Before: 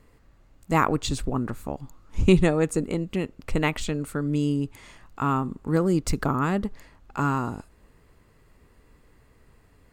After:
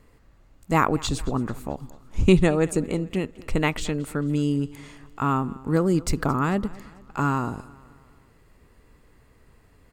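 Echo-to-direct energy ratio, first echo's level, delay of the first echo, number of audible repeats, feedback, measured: −20.0 dB, −21.0 dB, 221 ms, 3, 49%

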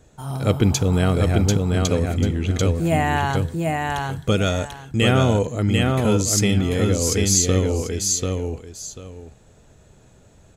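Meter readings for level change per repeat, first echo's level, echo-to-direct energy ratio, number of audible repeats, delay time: −13.0 dB, −3.0 dB, −3.0 dB, 2, 741 ms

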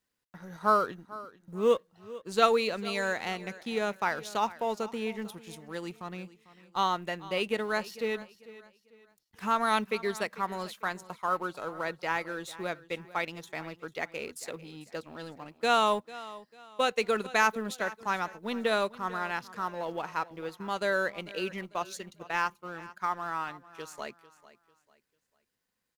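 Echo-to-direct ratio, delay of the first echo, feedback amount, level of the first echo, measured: −17.5 dB, 446 ms, 33%, −18.0 dB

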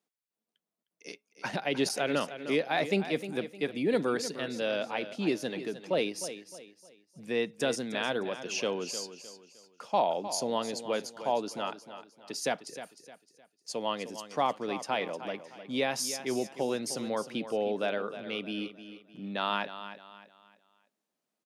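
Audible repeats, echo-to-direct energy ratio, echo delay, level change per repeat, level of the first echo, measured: 3, −11.5 dB, 307 ms, −9.0 dB, −12.0 dB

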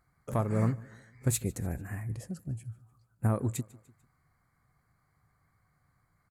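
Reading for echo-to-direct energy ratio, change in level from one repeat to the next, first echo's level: −21.5 dB, −6.5 dB, −22.5 dB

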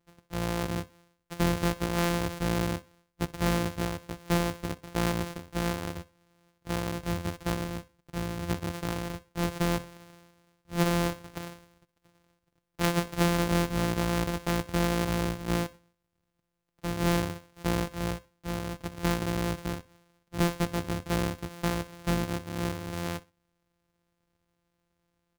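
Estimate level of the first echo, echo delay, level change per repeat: −21.0 dB, 62 ms, −11.5 dB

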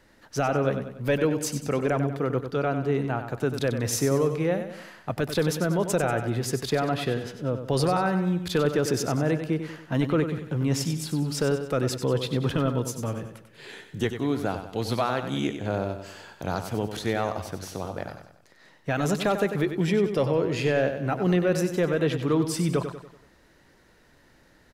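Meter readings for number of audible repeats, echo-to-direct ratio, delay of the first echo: 4, −8.0 dB, 95 ms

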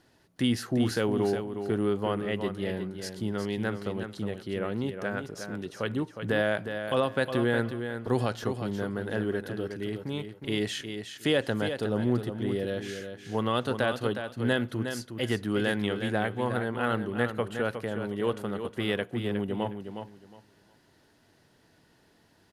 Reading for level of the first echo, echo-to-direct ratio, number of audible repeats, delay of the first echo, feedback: −8.0 dB, −8.0 dB, 2, 362 ms, 21%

